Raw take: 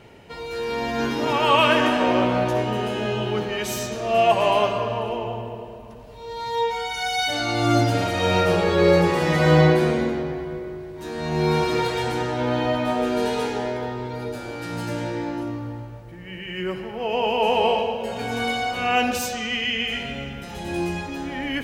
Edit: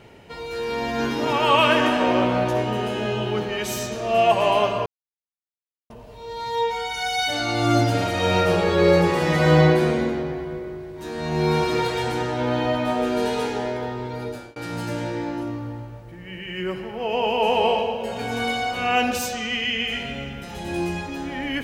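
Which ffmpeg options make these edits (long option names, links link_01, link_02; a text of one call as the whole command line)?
ffmpeg -i in.wav -filter_complex "[0:a]asplit=4[link_01][link_02][link_03][link_04];[link_01]atrim=end=4.86,asetpts=PTS-STARTPTS,afade=type=out:start_time=4.856:duration=0.004:curve=hsin[link_05];[link_02]atrim=start=4.86:end=5.9,asetpts=PTS-STARTPTS,volume=0[link_06];[link_03]atrim=start=5.9:end=14.56,asetpts=PTS-STARTPTS,afade=type=in:duration=0.004:curve=hsin,afade=type=out:start_time=8.3:duration=0.36:curve=qsin[link_07];[link_04]atrim=start=14.56,asetpts=PTS-STARTPTS,afade=type=in:duration=0.004:curve=hsin[link_08];[link_05][link_06][link_07][link_08]concat=n=4:v=0:a=1" out.wav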